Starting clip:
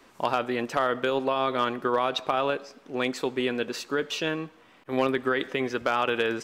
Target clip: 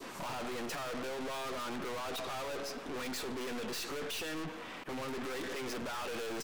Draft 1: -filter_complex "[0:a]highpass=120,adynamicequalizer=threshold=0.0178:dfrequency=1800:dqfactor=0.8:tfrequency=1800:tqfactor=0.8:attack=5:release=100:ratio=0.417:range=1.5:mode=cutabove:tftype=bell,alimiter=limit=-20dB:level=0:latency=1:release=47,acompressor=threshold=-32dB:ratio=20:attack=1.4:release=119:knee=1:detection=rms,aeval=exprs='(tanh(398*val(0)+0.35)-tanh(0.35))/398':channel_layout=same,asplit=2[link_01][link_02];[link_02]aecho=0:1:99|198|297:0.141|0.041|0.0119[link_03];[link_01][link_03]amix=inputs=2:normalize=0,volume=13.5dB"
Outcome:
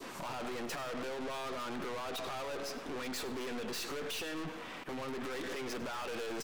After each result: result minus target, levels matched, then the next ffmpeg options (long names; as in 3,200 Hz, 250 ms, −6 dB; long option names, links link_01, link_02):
downward compressor: peak gain reduction +6.5 dB; echo-to-direct +8.5 dB
-filter_complex "[0:a]highpass=120,adynamicequalizer=threshold=0.0178:dfrequency=1800:dqfactor=0.8:tfrequency=1800:tqfactor=0.8:attack=5:release=100:ratio=0.417:range=1.5:mode=cutabove:tftype=bell,alimiter=limit=-20dB:level=0:latency=1:release=47,acompressor=threshold=-25dB:ratio=20:attack=1.4:release=119:knee=1:detection=rms,aeval=exprs='(tanh(398*val(0)+0.35)-tanh(0.35))/398':channel_layout=same,asplit=2[link_01][link_02];[link_02]aecho=0:1:99|198|297:0.141|0.041|0.0119[link_03];[link_01][link_03]amix=inputs=2:normalize=0,volume=13.5dB"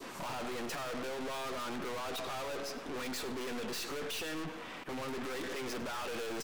echo-to-direct +8.5 dB
-filter_complex "[0:a]highpass=120,adynamicequalizer=threshold=0.0178:dfrequency=1800:dqfactor=0.8:tfrequency=1800:tqfactor=0.8:attack=5:release=100:ratio=0.417:range=1.5:mode=cutabove:tftype=bell,alimiter=limit=-20dB:level=0:latency=1:release=47,acompressor=threshold=-25dB:ratio=20:attack=1.4:release=119:knee=1:detection=rms,aeval=exprs='(tanh(398*val(0)+0.35)-tanh(0.35))/398':channel_layout=same,asplit=2[link_01][link_02];[link_02]aecho=0:1:99|198:0.0531|0.0154[link_03];[link_01][link_03]amix=inputs=2:normalize=0,volume=13.5dB"